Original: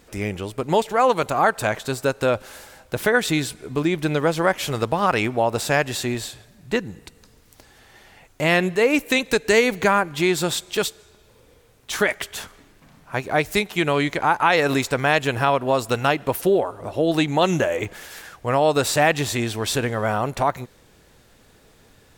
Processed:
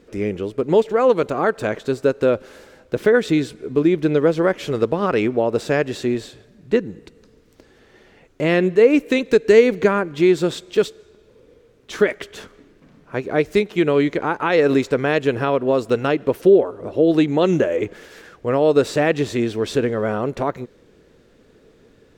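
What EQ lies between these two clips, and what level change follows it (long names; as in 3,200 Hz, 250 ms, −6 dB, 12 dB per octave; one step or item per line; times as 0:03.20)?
drawn EQ curve 110 Hz 0 dB, 210 Hz +6 dB, 450 Hz +10 dB, 790 Hz −4 dB, 1,300 Hz 0 dB, 3,000 Hz −2 dB, 6,100 Hz −5 dB, 11,000 Hz −13 dB
−2.5 dB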